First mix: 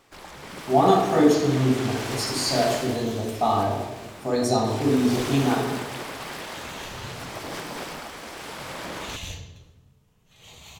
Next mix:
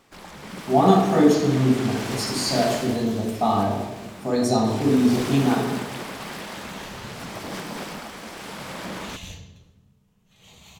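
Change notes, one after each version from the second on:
second sound −3.5 dB
master: add parametric band 200 Hz +9.5 dB 0.47 octaves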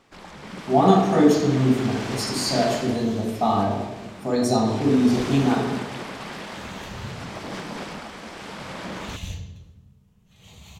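first sound: add high-frequency loss of the air 50 metres
second sound: add parametric band 67 Hz +9.5 dB 2.4 octaves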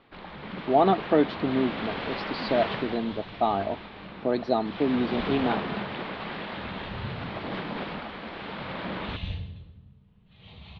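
speech: send off
master: add Butterworth low-pass 4,100 Hz 48 dB per octave

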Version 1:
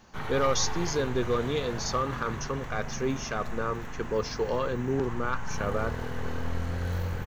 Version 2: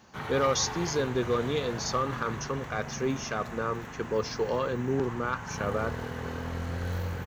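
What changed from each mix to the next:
master: add high-pass filter 74 Hz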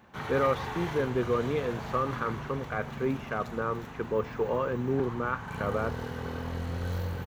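speech: add low-pass filter 2,500 Hz 24 dB per octave
second sound −10.0 dB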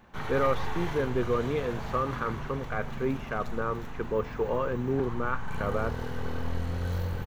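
master: remove high-pass filter 74 Hz

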